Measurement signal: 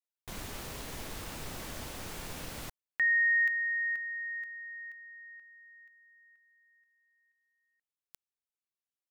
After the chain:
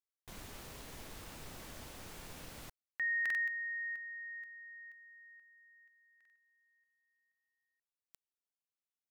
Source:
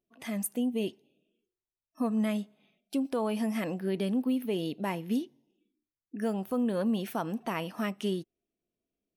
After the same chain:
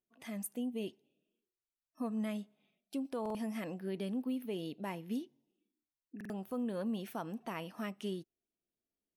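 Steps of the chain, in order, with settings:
buffer that repeats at 0:03.21/0:06.16, samples 2,048, times 2
level −8 dB

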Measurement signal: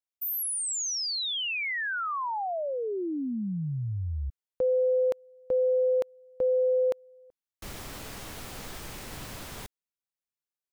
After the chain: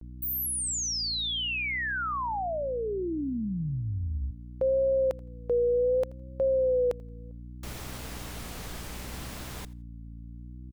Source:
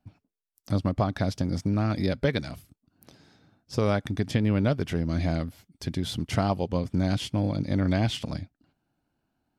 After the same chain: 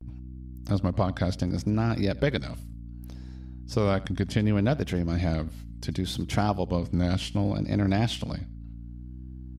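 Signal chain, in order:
repeating echo 83 ms, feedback 17%, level −21.5 dB
mains hum 60 Hz, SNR 12 dB
pitch vibrato 0.67 Hz 93 cents

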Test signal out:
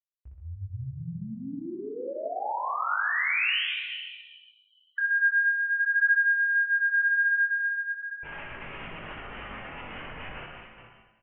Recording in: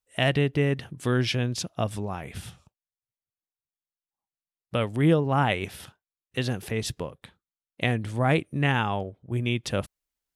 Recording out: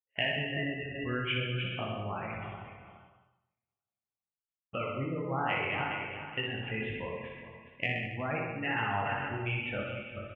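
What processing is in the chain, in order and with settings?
feedback delay that plays each chunk backwards 208 ms, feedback 54%, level −8.5 dB
gate on every frequency bin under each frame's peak −20 dB strong
noise gate with hold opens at −42 dBFS
Butterworth low-pass 3,000 Hz 96 dB per octave
downward compressor, threshold −26 dBFS
chorus effect 0.46 Hz, delay 18 ms, depth 6 ms
tilt shelving filter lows −7 dB, about 910 Hz
reverse bouncing-ball delay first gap 60 ms, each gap 1.1×, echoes 5
reverb whose tail is shaped and stops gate 200 ms flat, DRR 6.5 dB

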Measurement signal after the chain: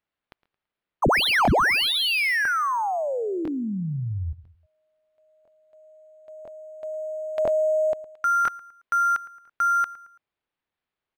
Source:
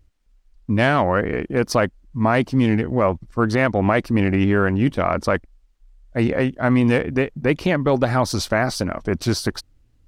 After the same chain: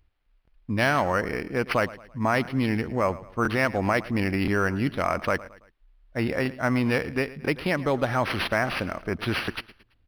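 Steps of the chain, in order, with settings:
tilt shelving filter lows −5 dB, about 1,200 Hz
on a send: repeating echo 111 ms, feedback 41%, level −18 dB
on the sum: regular buffer underruns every 1.00 s, samples 1,024, repeat, from 0:00.43
linearly interpolated sample-rate reduction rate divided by 6×
level −3 dB

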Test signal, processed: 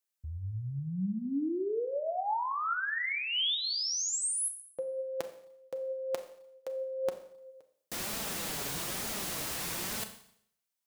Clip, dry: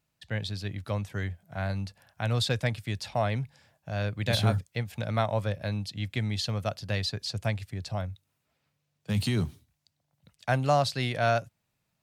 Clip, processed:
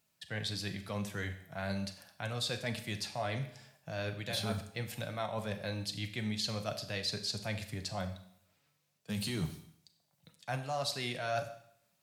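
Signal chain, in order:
high-pass filter 130 Hz 6 dB per octave
high-shelf EQ 4,200 Hz +7 dB
reversed playback
downward compressor 6 to 1, threshold −33 dBFS
reversed playback
flanger 1.1 Hz, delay 4.3 ms, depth 3 ms, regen +49%
four-comb reverb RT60 0.66 s, combs from 29 ms, DRR 8.5 dB
level +4 dB

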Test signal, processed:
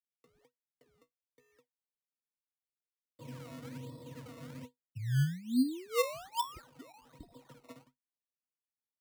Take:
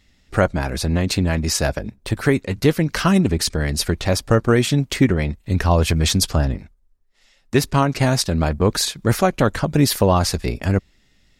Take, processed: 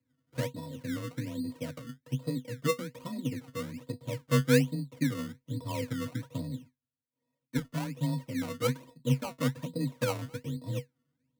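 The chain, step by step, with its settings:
running median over 25 samples
high-pass filter 110 Hz 12 dB per octave
resonances in every octave A#, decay 0.13 s
sample-and-hold swept by an LFO 19×, swing 100% 1.2 Hz
frequency shifter +20 Hz
level −3.5 dB

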